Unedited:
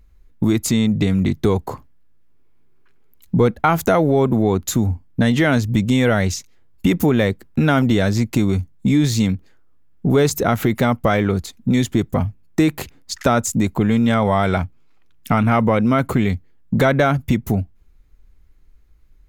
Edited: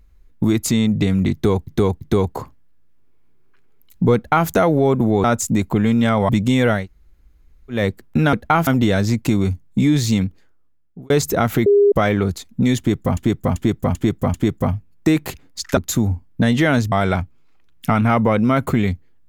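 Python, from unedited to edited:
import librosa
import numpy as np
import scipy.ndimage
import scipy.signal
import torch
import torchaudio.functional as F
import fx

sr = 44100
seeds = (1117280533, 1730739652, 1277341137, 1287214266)

y = fx.edit(x, sr, fx.repeat(start_s=1.33, length_s=0.34, count=3),
    fx.duplicate(start_s=3.47, length_s=0.34, to_s=7.75),
    fx.swap(start_s=4.56, length_s=1.15, other_s=13.29, other_length_s=1.05),
    fx.room_tone_fill(start_s=6.22, length_s=0.96, crossfade_s=0.16),
    fx.fade_out_span(start_s=9.33, length_s=0.85),
    fx.bleep(start_s=10.74, length_s=0.26, hz=406.0, db=-9.0),
    fx.repeat(start_s=11.86, length_s=0.39, count=5), tone=tone)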